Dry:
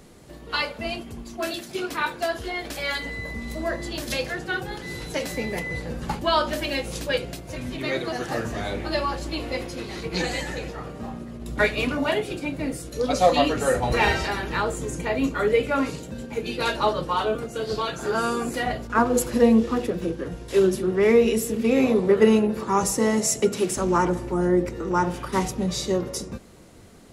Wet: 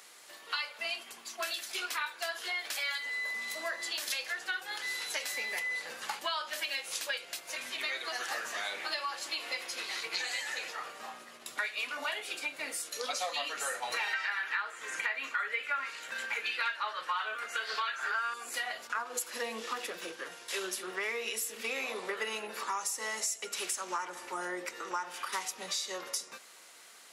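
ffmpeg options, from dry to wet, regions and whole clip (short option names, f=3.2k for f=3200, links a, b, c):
-filter_complex "[0:a]asettb=1/sr,asplit=3[a][b][c];[a]atrim=end=14.134[d];[b]atrim=start=14.13:end=18.34,asetpts=PTS-STARTPTS,afade=t=in:d=0.004:c=qsin,afade=t=out:st=4.206:d=0.004:c=qsin,highpass=48,acrossover=split=4600[e][f];[f]acompressor=threshold=-46dB:ratio=4:attack=1:release=60[g];[e][g]amix=inputs=2:normalize=0,equalizer=f=1.7k:t=o:w=1.6:g=14[h];[c]atrim=start=18.336[i];[d][h]acrossfade=d=0.004:c1=hsin:c2=qsin[j];[j][i]acrossfade=d=0.004:c1=qsin:c2=hsin,highpass=1.3k,acompressor=threshold=-36dB:ratio=6,volume=3.5dB"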